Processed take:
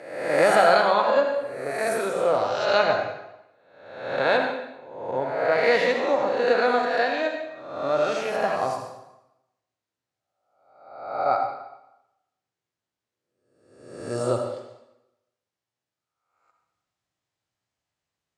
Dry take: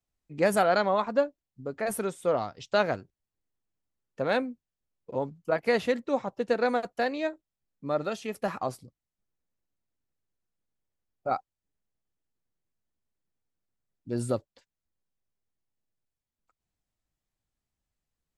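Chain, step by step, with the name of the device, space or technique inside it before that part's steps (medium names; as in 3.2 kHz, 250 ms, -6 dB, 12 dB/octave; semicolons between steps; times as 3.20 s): reverse spectral sustain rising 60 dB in 0.92 s; supermarket ceiling speaker (band-pass 290–6700 Hz; reverberation RT60 0.90 s, pre-delay 60 ms, DRR 3 dB); resonant low shelf 150 Hz +10 dB, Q 1.5; trim +3 dB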